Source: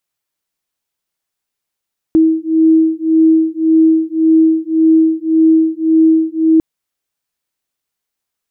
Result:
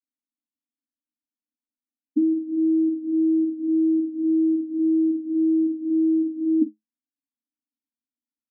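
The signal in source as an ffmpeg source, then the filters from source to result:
-f lavfi -i "aevalsrc='0.282*(sin(2*PI*320*t)+sin(2*PI*321.8*t))':d=4.45:s=44100"
-filter_complex "[0:a]aresample=11025,acrusher=bits=3:mode=log:mix=0:aa=0.000001,aresample=44100,asuperpass=centerf=260:order=20:qfactor=2.7,asplit=2[s0][s1];[s1]adelay=47,volume=0.251[s2];[s0][s2]amix=inputs=2:normalize=0"

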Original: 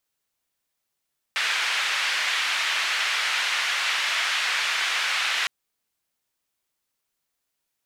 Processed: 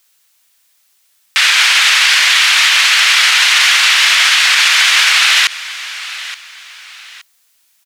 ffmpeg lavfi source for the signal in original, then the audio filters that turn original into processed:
-f lavfi -i "anoisesrc=c=white:d=4.11:r=44100:seed=1,highpass=f=1800,lowpass=f=2300,volume=-6.1dB"
-af "tiltshelf=f=780:g=-9.5,aecho=1:1:872|1744:0.0794|0.027,alimiter=level_in=5.01:limit=0.891:release=50:level=0:latency=1"

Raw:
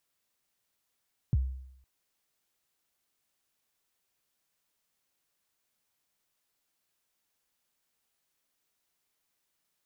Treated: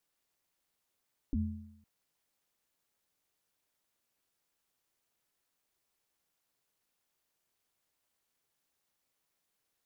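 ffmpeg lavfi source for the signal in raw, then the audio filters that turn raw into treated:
-f lavfi -i "aevalsrc='0.1*pow(10,-3*t/0.75)*sin(2*PI*(160*0.032/log(65/160)*(exp(log(65/160)*min(t,0.032)/0.032)-1)+65*max(t-0.032,0)))':d=0.51:s=44100"
-af "equalizer=f=370:w=0.36:g=3.5,alimiter=level_in=1.19:limit=0.0631:level=0:latency=1:release=10,volume=0.841,aeval=exprs='val(0)*sin(2*PI*150*n/s)':c=same"

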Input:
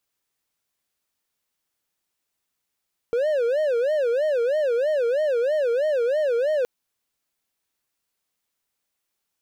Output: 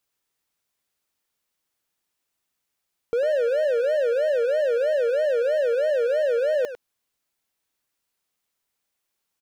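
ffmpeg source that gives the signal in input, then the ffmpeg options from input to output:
-f lavfi -i "aevalsrc='0.141*(1-4*abs(mod((542.5*t-79.5/(2*PI*3.1)*sin(2*PI*3.1*t))+0.25,1)-0.5))':d=3.52:s=44100"
-filter_complex "[0:a]asplit=2[s0][s1];[s1]adelay=100,highpass=300,lowpass=3400,asoftclip=type=hard:threshold=0.0531,volume=0.398[s2];[s0][s2]amix=inputs=2:normalize=0"

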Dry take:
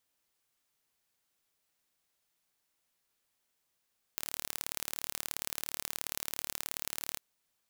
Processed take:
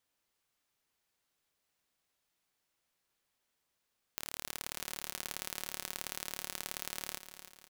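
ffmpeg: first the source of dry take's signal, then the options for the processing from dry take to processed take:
-f lavfi -i "aevalsrc='0.447*eq(mod(n,1189),0)*(0.5+0.5*eq(mod(n,2378),0))':d=3:s=44100"
-filter_complex "[0:a]highshelf=f=6200:g=-5.5,asplit=2[s0][s1];[s1]aecho=0:1:302|604|906|1208|1510:0.282|0.132|0.0623|0.0293|0.0138[s2];[s0][s2]amix=inputs=2:normalize=0"

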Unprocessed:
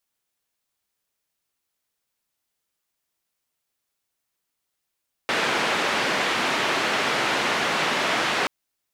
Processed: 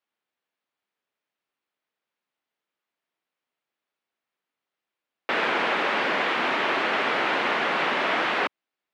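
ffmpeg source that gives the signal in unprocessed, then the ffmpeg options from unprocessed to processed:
-f lavfi -i "anoisesrc=c=white:d=3.18:r=44100:seed=1,highpass=f=210,lowpass=f=2400,volume=-9.1dB"
-filter_complex "[0:a]highpass=90,acrossover=split=180 3500:gain=0.2 1 0.1[s0][s1][s2];[s0][s1][s2]amix=inputs=3:normalize=0"

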